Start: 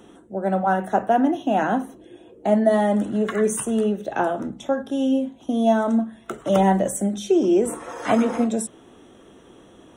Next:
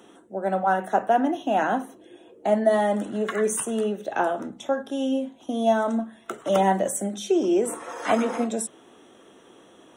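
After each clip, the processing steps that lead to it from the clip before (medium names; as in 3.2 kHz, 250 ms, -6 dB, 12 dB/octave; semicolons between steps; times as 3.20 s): high-pass 390 Hz 6 dB/octave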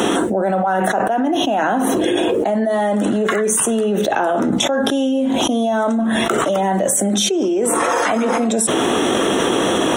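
level flattener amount 100%; trim -2 dB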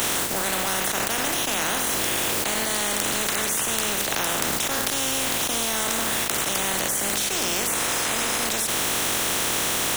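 spectral contrast reduction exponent 0.2; trim -7 dB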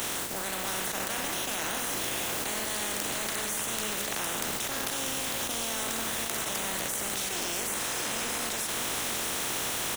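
delay 640 ms -5.5 dB; trim -8.5 dB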